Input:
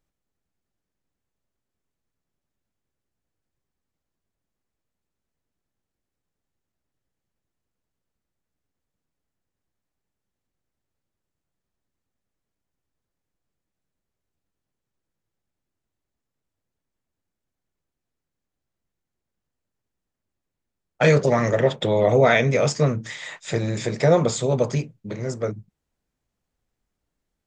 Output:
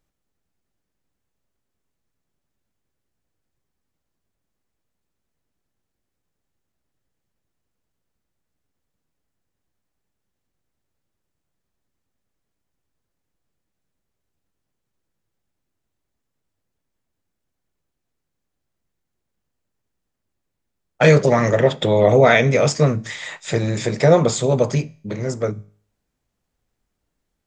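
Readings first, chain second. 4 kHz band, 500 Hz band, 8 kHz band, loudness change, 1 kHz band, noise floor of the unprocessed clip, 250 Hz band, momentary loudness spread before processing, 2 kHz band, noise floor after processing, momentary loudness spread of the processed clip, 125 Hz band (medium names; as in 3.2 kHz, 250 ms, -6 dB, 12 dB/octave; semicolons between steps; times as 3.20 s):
+4.0 dB, +4.0 dB, +3.5 dB, +4.0 dB, +3.5 dB, -84 dBFS, +4.0 dB, 14 LU, +4.0 dB, -78 dBFS, 14 LU, +4.0 dB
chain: feedback comb 52 Hz, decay 0.52 s, harmonics all, mix 30%; trim +6 dB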